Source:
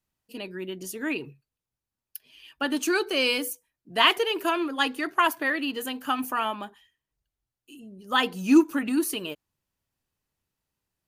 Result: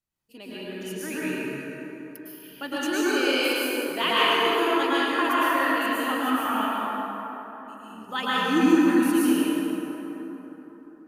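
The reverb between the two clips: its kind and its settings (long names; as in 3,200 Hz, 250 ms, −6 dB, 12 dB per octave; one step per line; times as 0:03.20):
dense smooth reverb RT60 4 s, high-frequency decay 0.45×, pre-delay 95 ms, DRR −9.5 dB
level −7.5 dB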